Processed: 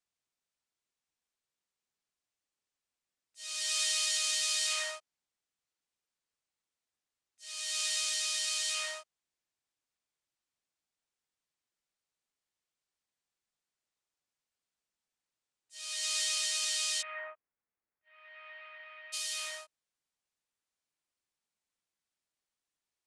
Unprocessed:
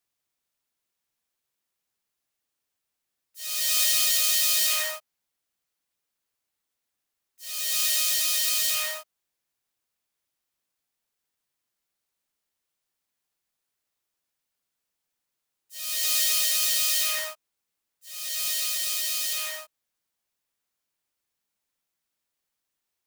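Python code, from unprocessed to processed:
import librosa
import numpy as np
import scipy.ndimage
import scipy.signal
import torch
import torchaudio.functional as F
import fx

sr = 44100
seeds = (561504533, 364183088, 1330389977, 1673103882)

y = fx.steep_lowpass(x, sr, hz=fx.steps((0.0, 9200.0), (17.01, 2200.0), (19.12, 10000.0)), slope=36)
y = F.gain(torch.from_numpy(y), -6.0).numpy()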